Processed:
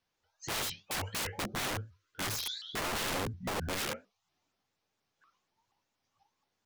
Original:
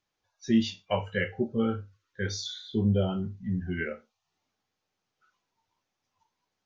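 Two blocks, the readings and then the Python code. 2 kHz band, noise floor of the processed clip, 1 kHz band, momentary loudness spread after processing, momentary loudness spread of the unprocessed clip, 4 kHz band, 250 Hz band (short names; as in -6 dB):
-1.5 dB, -84 dBFS, +2.0 dB, 6 LU, 11 LU, +2.0 dB, -15.0 dB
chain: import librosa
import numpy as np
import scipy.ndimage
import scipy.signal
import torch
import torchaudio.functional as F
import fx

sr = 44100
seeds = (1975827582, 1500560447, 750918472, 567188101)

y = (np.mod(10.0 ** (29.5 / 20.0) * x + 1.0, 2.0) - 1.0) / 10.0 ** (29.5 / 20.0)
y = fx.vibrato_shape(y, sr, shape='saw_up', rate_hz=4.2, depth_cents=250.0)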